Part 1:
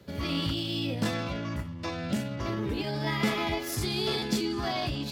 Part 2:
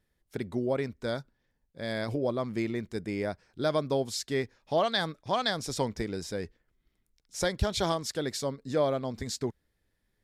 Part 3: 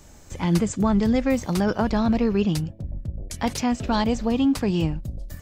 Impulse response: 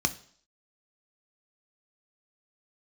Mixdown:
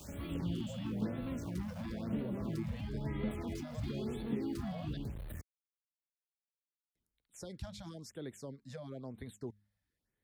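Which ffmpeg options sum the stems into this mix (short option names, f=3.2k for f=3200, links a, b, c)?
-filter_complex "[0:a]lowpass=f=3.7k:w=0.5412,lowpass=f=3.7k:w=1.3066,volume=-8.5dB[a];[1:a]bandreject=f=102.8:t=h:w=4,bandreject=f=205.6:t=h:w=4,acrossover=split=430|3000[b][c][d];[c]acompressor=threshold=-29dB:ratio=6[e];[b][e][d]amix=inputs=3:normalize=0,volume=-9dB,asplit=3[f][g][h];[f]atrim=end=4.97,asetpts=PTS-STARTPTS,afade=t=out:st=4.966:d=0.004:c=hsin[i];[g]atrim=start=4.97:end=6.95,asetpts=PTS-STARTPTS,volume=0[j];[h]atrim=start=6.95,asetpts=PTS-STARTPTS,afade=t=in:d=0.004:c=hsin[k];[i][j][k]concat=n=3:v=0:a=1[l];[2:a]acompressor=threshold=-30dB:ratio=3,aeval=exprs='(tanh(79.4*val(0)+0.4)-tanh(0.4))/79.4':c=same,acrusher=bits=8:mix=0:aa=0.000001,volume=1dB[m];[l][m]amix=inputs=2:normalize=0,highpass=46,alimiter=level_in=7.5dB:limit=-24dB:level=0:latency=1:release=20,volume=-7.5dB,volume=0dB[n];[a][n]amix=inputs=2:normalize=0,acrossover=split=450[o][p];[p]acompressor=threshold=-51dB:ratio=4[q];[o][q]amix=inputs=2:normalize=0,afftfilt=real='re*(1-between(b*sr/1024,330*pow(6500/330,0.5+0.5*sin(2*PI*1*pts/sr))/1.41,330*pow(6500/330,0.5+0.5*sin(2*PI*1*pts/sr))*1.41))':imag='im*(1-between(b*sr/1024,330*pow(6500/330,0.5+0.5*sin(2*PI*1*pts/sr))/1.41,330*pow(6500/330,0.5+0.5*sin(2*PI*1*pts/sr))*1.41))':win_size=1024:overlap=0.75"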